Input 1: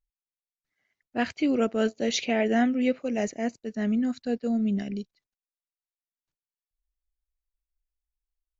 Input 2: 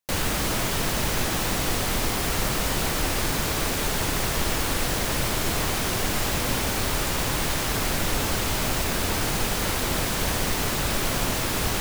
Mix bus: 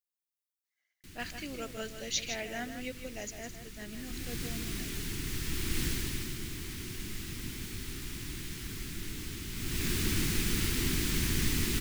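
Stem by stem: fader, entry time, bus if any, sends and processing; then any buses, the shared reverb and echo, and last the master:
-12.0 dB, 0.00 s, no send, echo send -8.5 dB, tilt +4 dB/oct
3.71 s -16.5 dB -> 4.26 s -5.5 dB -> 5.83 s -5.5 dB -> 6.38 s -14 dB -> 9.49 s -14 dB -> 9.85 s -4 dB, 0.95 s, no send, echo send -4.5 dB, EQ curve 360 Hz 0 dB, 580 Hz -26 dB, 2000 Hz -3 dB; auto duck -13 dB, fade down 2.00 s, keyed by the first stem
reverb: off
echo: echo 0.157 s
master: dry

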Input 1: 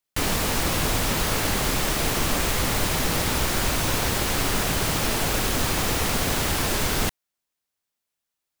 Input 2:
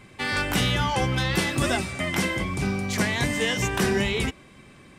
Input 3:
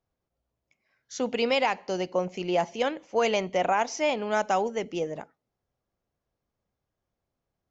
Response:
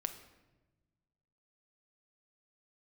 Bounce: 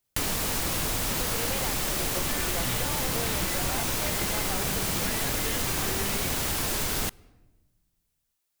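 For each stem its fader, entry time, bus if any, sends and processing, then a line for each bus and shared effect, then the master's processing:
-1.0 dB, 0.00 s, send -17.5 dB, high shelf 5500 Hz +6.5 dB
-5.0 dB, 2.05 s, no send, dry
-6.0 dB, 0.00 s, no send, dry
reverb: on, RT60 1.1 s, pre-delay 6 ms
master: compressor 3:1, threshold -27 dBFS, peak gain reduction 8 dB

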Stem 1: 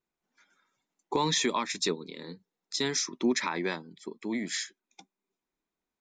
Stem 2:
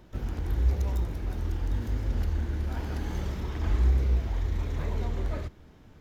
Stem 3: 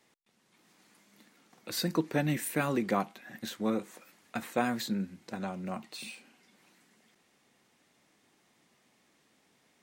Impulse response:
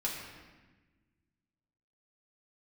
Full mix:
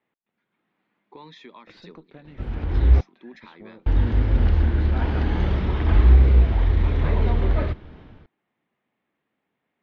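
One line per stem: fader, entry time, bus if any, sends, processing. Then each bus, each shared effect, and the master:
-16.5 dB, 0.00 s, no send, dry
+2.0 dB, 2.25 s, muted 3.01–3.86, no send, AGC gain up to 8 dB
-3.0 dB, 0.00 s, no send, low-pass opened by the level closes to 2500 Hz, open at -27.5 dBFS; compressor 6:1, threshold -36 dBFS, peak gain reduction 13 dB; tube stage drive 29 dB, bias 0.8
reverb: off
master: LPF 3700 Hz 24 dB/oct

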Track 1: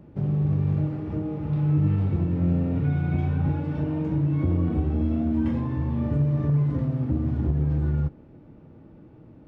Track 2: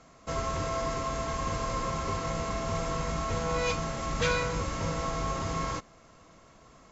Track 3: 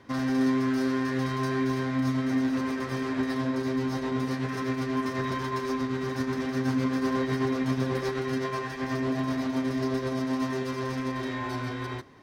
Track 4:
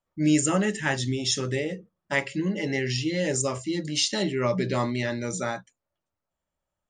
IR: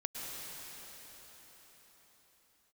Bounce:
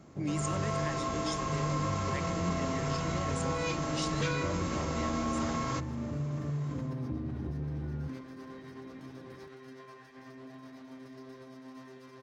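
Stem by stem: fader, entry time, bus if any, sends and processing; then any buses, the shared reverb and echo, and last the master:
-5.0 dB, 0.00 s, bus B, no send, dry
-6.0 dB, 0.00 s, bus A, no send, AGC gain up to 9 dB
-19.5 dB, 1.35 s, bus B, no send, dry
-9.5 dB, 0.00 s, bus A, no send, vibrato 6 Hz 82 cents
bus A: 0.0 dB, compressor, threshold -30 dBFS, peak gain reduction 10 dB
bus B: 0.0 dB, compressor 1.5:1, threshold -37 dBFS, peak gain reduction 5.5 dB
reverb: off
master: low shelf 82 Hz -11 dB; sustainer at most 66 dB/s

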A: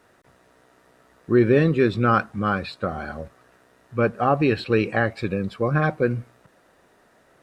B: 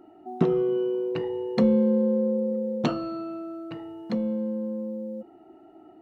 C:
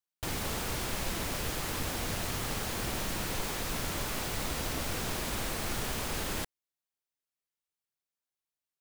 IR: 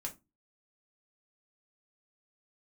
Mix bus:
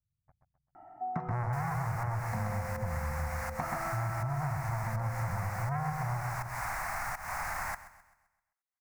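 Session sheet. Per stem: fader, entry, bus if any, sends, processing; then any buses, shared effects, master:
-4.5 dB, 0.00 s, no send, echo send -5 dB, inverse Chebyshev low-pass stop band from 910 Hz, stop band 80 dB; sample leveller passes 5
-4.0 dB, 0.75 s, no send, echo send -11 dB, low shelf 400 Hz +11 dB; auto duck -9 dB, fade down 0.80 s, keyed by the first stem
-5.0 dB, 1.30 s, no send, echo send -16.5 dB, pump 82 bpm, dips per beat 1, -20 dB, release 0.279 s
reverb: off
echo: feedback echo 0.13 s, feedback 43%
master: EQ curve 140 Hz 0 dB, 220 Hz -10 dB, 420 Hz -18 dB, 740 Hz +13 dB, 2100 Hz +11 dB, 3200 Hz -18 dB, 5300 Hz 0 dB; compressor, threshold -31 dBFS, peak gain reduction 11 dB

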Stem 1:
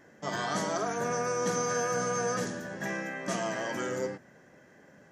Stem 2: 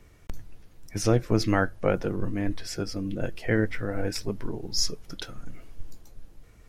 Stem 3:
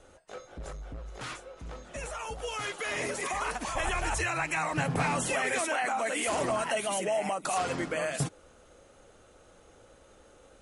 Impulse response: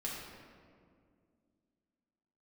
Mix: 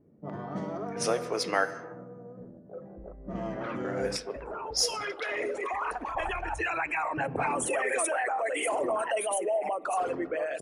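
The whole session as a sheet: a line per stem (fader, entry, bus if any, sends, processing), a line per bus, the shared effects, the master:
0.98 s -5 dB -> 1.61 s -16 dB -> 3.17 s -16 dB -> 3.39 s -3 dB, 0.00 s, no send, tilt shelf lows +7 dB, about 650 Hz; notch 1600 Hz
-1.5 dB, 0.00 s, muted 1.71–3.84, send -10 dB, HPF 450 Hz 24 dB/oct
-0.5 dB, 2.40 s, send -20.5 dB, formant sharpening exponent 2; resonant low shelf 250 Hz -7 dB, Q 1.5; de-hum 154.9 Hz, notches 4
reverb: on, RT60 2.2 s, pre-delay 4 ms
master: bell 9500 Hz +11.5 dB 0.23 oct; low-pass opened by the level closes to 360 Hz, open at -25 dBFS

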